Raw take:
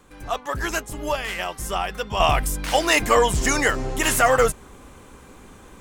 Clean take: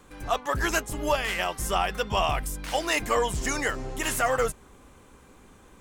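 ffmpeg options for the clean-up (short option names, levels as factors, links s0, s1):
-af "asetnsamples=n=441:p=0,asendcmd='2.2 volume volume -7.5dB',volume=1"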